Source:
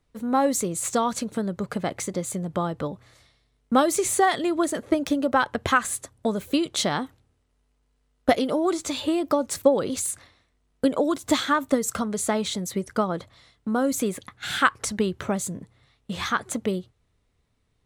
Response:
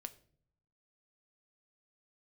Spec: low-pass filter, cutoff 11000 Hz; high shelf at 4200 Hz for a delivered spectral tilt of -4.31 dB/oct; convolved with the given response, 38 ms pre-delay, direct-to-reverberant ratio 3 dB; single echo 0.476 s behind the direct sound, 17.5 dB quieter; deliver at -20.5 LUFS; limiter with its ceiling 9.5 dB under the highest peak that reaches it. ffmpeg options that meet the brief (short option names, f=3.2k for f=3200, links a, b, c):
-filter_complex "[0:a]lowpass=11k,highshelf=f=4.2k:g=-5,alimiter=limit=-14.5dB:level=0:latency=1,aecho=1:1:476:0.133,asplit=2[a][b];[1:a]atrim=start_sample=2205,adelay=38[c];[b][c]afir=irnorm=-1:irlink=0,volume=1.5dB[d];[a][d]amix=inputs=2:normalize=0,volume=5dB"